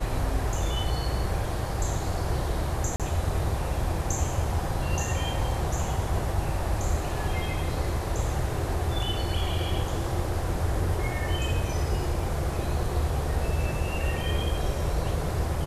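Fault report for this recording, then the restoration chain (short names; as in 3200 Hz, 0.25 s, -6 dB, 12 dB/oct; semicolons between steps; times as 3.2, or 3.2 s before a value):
2.96–3 gap 37 ms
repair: interpolate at 2.96, 37 ms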